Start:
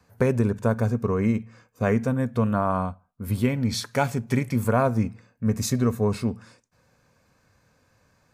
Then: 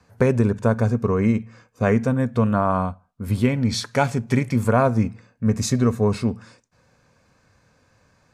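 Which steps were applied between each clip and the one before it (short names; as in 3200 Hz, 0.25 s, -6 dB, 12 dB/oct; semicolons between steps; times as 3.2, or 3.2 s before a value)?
LPF 9000 Hz 12 dB/oct; gain +3.5 dB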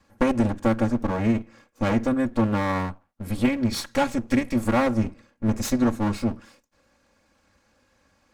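minimum comb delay 3.6 ms; gain -2 dB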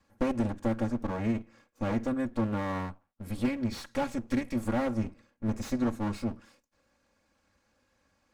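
slew limiter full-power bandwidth 100 Hz; gain -7.5 dB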